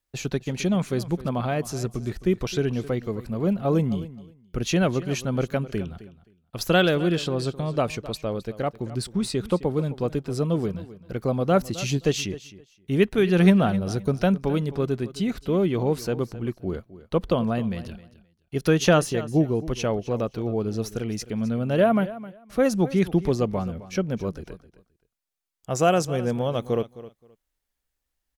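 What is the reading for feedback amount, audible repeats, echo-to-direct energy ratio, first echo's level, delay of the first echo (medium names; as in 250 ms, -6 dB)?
18%, 2, -16.5 dB, -16.5 dB, 262 ms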